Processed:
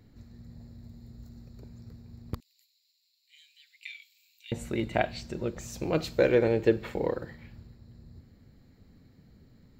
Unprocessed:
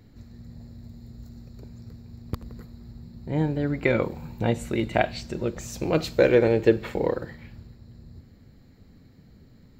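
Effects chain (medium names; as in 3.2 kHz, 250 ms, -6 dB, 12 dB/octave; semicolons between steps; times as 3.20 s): 2.40–4.52 s: steep high-pass 2.5 kHz 48 dB/octave; trim -4.5 dB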